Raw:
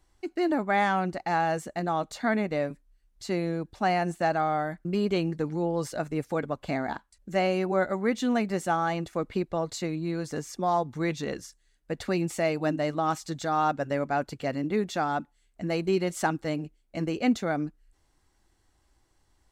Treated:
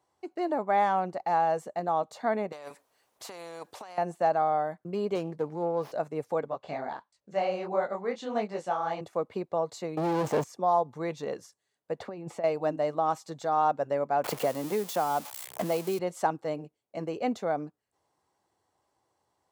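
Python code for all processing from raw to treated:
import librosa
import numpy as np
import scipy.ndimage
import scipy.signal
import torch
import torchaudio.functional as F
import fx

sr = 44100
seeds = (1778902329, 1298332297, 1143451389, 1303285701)

y = fx.chain(x, sr, fx.peak_eq(hz=150.0, db=-14.5, octaves=1.7),
    fx.over_compress(threshold_db=-37.0, ratio=-1.0),
    fx.spectral_comp(ratio=2.0), at=(2.52, 3.98))
y = fx.chain(y, sr, fx.highpass(hz=58.0, slope=12),
    fx.running_max(window=5), at=(5.15, 5.92))
y = fx.chain(y, sr, fx.lowpass(hz=5100.0, slope=12),
    fx.high_shelf(hz=2300.0, db=8.5),
    fx.detune_double(cents=53), at=(6.48, 9.01))
y = fx.chain(y, sr, fx.median_filter(points=9),
    fx.peak_eq(hz=260.0, db=2.5, octaves=0.34),
    fx.leveller(passes=5), at=(9.97, 10.44))
y = fx.chain(y, sr, fx.lowpass(hz=1900.0, slope=6),
    fx.over_compress(threshold_db=-31.0, ratio=-0.5), at=(11.99, 12.44))
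y = fx.chain(y, sr, fx.crossing_spikes(level_db=-22.5),
    fx.band_squash(depth_pct=100), at=(14.24, 15.99))
y = scipy.signal.sosfilt(scipy.signal.butter(4, 100.0, 'highpass', fs=sr, output='sos'), y)
y = fx.band_shelf(y, sr, hz=690.0, db=9.5, octaves=1.7)
y = y * 10.0 ** (-8.0 / 20.0)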